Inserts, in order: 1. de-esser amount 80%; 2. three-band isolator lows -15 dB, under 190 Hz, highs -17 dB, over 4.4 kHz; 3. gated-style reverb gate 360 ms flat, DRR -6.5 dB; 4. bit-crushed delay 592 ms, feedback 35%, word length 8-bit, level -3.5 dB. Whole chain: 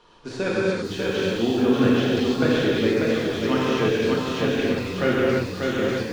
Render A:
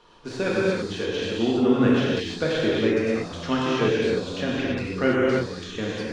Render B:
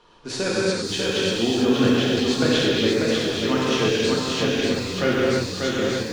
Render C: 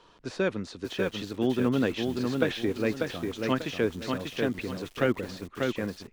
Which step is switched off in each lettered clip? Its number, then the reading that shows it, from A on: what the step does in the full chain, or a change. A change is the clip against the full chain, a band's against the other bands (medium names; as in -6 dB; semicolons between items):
4, momentary loudness spread change +3 LU; 1, 8 kHz band +10.0 dB; 3, momentary loudness spread change +2 LU